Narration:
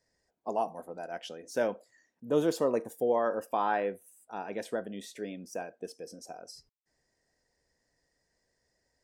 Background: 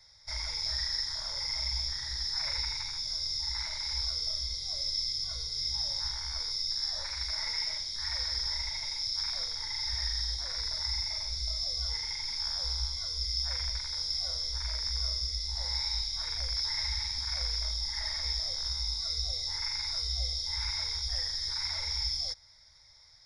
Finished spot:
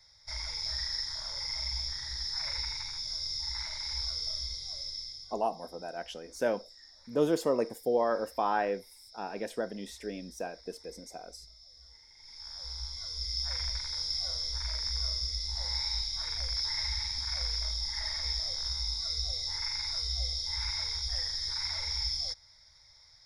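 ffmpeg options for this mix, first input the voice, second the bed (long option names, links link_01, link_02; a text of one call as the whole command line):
ffmpeg -i stem1.wav -i stem2.wav -filter_complex "[0:a]adelay=4850,volume=0dB[link_01];[1:a]volume=19.5dB,afade=type=out:start_time=4.44:duration=0.99:silence=0.1,afade=type=in:start_time=12.14:duration=1.47:silence=0.0841395[link_02];[link_01][link_02]amix=inputs=2:normalize=0" out.wav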